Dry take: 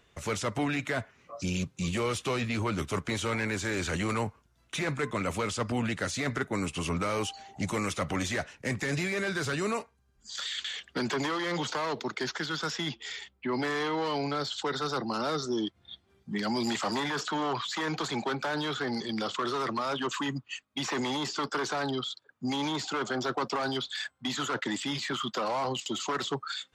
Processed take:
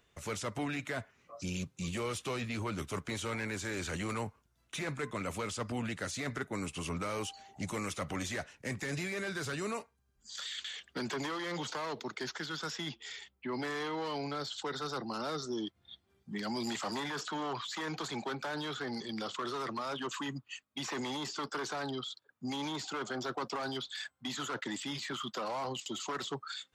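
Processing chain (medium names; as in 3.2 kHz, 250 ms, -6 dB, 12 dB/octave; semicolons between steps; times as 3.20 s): treble shelf 9.9 kHz +7 dB; trim -6.5 dB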